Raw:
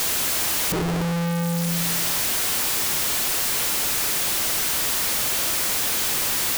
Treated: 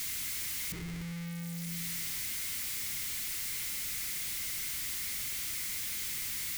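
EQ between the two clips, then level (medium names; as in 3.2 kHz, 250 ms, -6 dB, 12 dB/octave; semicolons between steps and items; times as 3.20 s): amplifier tone stack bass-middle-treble 6-0-2; peaking EQ 2.1 kHz +10 dB 0.24 oct; +1.0 dB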